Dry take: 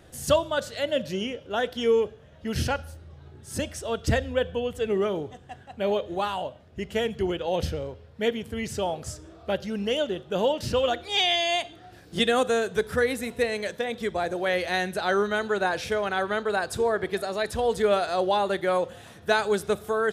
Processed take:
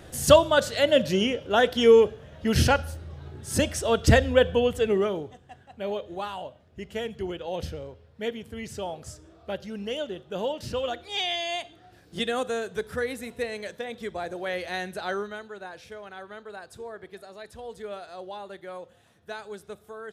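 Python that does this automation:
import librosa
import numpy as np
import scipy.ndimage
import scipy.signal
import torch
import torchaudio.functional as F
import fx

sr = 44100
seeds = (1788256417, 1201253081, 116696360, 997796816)

y = fx.gain(x, sr, db=fx.line((4.66, 6.0), (5.42, -5.5), (15.1, -5.5), (15.51, -15.0)))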